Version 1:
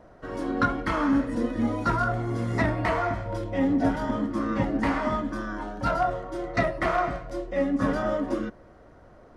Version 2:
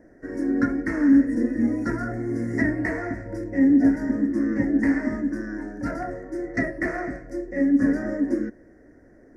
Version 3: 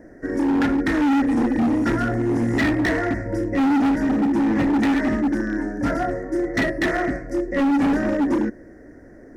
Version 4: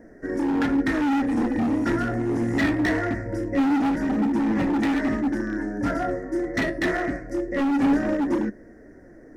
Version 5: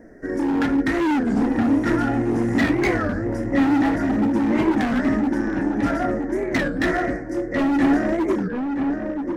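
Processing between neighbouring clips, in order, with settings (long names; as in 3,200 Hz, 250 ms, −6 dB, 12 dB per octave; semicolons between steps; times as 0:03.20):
drawn EQ curve 170 Hz 0 dB, 280 Hz +12 dB, 1,200 Hz −13 dB, 1,800 Hz +11 dB, 3,300 Hz −27 dB, 5,400 Hz +3 dB; level −4 dB
hard clipping −24 dBFS, distortion −6 dB; level +7.5 dB
flanger 0.23 Hz, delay 4.2 ms, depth 8.3 ms, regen +70%; level +1.5 dB
feedback echo with a low-pass in the loop 970 ms, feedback 29%, low-pass 2,000 Hz, level −5 dB; wow of a warped record 33 1/3 rpm, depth 250 cents; level +2 dB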